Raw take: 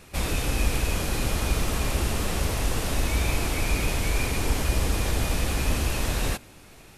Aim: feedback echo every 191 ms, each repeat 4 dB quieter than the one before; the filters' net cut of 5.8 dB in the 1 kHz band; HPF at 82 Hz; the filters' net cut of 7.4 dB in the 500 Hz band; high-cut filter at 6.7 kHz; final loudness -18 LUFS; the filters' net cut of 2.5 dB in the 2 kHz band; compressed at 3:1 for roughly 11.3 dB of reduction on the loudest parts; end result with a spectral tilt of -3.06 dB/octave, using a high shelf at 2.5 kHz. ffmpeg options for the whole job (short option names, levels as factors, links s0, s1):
-af "highpass=82,lowpass=6700,equalizer=f=500:t=o:g=-8.5,equalizer=f=1000:t=o:g=-4.5,equalizer=f=2000:t=o:g=-5.5,highshelf=f=2500:g=6.5,acompressor=threshold=0.00891:ratio=3,aecho=1:1:191|382|573|764|955|1146|1337|1528|1719:0.631|0.398|0.25|0.158|0.0994|0.0626|0.0394|0.0249|0.0157,volume=9.44"